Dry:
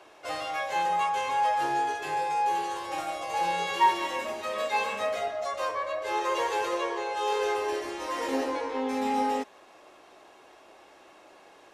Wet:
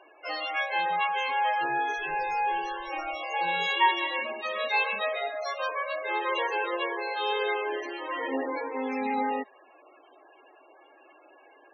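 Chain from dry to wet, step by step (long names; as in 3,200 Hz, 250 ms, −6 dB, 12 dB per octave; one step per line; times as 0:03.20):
0:01.95–0:03.19: background noise brown −53 dBFS
spectral peaks only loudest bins 32
flat-topped bell 3,100 Hz +8 dB 2.3 octaves
level −1.5 dB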